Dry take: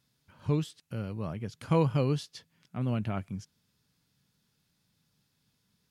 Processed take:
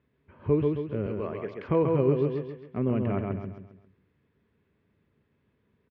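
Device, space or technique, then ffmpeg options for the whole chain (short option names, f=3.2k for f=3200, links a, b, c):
bass amplifier: -filter_complex "[0:a]asettb=1/sr,asplit=3[a][b][c];[a]atrim=end=1.064[d];[b]atrim=start=1.06:end=1.69,asetpts=PTS-STARTPTS,afade=t=in:d=0.004:c=qsin,afade=t=out:st=0.626:d=0.004:c=qsin,aemphasis=mode=production:type=riaa[e];[c]atrim=start=1.686[f];[d][e]acrossfade=d=0.004:c1=hsin:c2=qsin[g];[g][f]acrossfade=d=0.004:c1=qsin:c2=hsin,aecho=1:1:134|268|402|536|670:0.596|0.238|0.0953|0.0381|0.0152,acompressor=threshold=-26dB:ratio=4,highpass=63,equalizer=f=64:t=q:w=4:g=8,equalizer=f=120:t=q:w=4:g=-6,equalizer=f=170:t=q:w=4:g=-7,equalizer=f=400:t=q:w=4:g=10,equalizer=f=800:t=q:w=4:g=-7,equalizer=f=1.4k:t=q:w=4:g=-8,lowpass=f=2.1k:w=0.5412,lowpass=f=2.1k:w=1.3066,volume=6.5dB"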